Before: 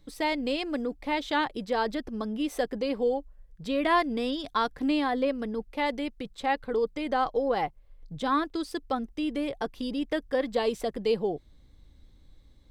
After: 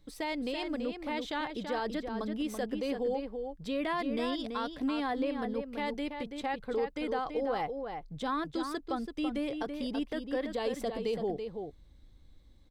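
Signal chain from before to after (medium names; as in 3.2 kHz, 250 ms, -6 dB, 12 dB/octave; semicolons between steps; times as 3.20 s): peak limiter -21.5 dBFS, peak gain reduction 8 dB; echo from a far wall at 57 m, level -6 dB; trim -3.5 dB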